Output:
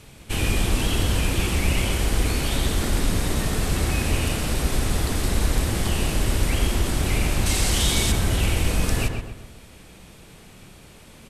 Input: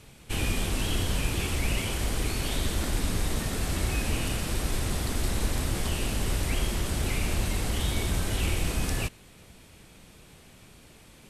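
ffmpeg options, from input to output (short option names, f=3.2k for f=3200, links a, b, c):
-filter_complex "[0:a]asettb=1/sr,asplit=3[a][b][c];[a]atrim=end=7.464[d];[b]atrim=start=7.46:end=8.12,asetpts=PTS-STARTPTS,afade=t=in:d=0.004:c=qsin,afade=t=out:st=0.656:d=0.004:c=qsin,equalizer=f=6.2k:w=0.49:g=9.5[e];[c]atrim=start=8.116[f];[d][e]acrossfade=d=0.004:c1=hsin:c2=qsin[g];[g][f]acrossfade=d=0.004:c1=qsin:c2=hsin,asplit=2[h][i];[i]adelay=129,lowpass=f=2k:p=1,volume=-4dB,asplit=2[j][k];[k]adelay=129,lowpass=f=2k:p=1,volume=0.45,asplit=2[l][m];[m]adelay=129,lowpass=f=2k:p=1,volume=0.45,asplit=2[n][o];[o]adelay=129,lowpass=f=2k:p=1,volume=0.45,asplit=2[p][q];[q]adelay=129,lowpass=f=2k:p=1,volume=0.45,asplit=2[r][s];[s]adelay=129,lowpass=f=2k:p=1,volume=0.45[t];[h][j][l][n][p][r][t]amix=inputs=7:normalize=0,volume=4.5dB"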